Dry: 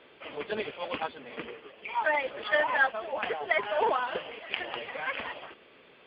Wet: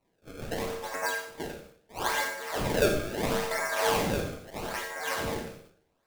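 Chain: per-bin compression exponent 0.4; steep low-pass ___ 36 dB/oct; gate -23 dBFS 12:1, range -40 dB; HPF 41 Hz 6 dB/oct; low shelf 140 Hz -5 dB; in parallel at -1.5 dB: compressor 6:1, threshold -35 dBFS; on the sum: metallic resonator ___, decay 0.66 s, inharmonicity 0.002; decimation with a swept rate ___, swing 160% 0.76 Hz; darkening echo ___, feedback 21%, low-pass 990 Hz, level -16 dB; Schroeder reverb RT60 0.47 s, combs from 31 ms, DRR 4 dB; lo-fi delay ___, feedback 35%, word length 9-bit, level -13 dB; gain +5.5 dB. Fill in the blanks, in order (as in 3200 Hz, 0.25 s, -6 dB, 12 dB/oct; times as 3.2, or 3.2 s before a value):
2100 Hz, 89 Hz, 26×, 0.118 s, 92 ms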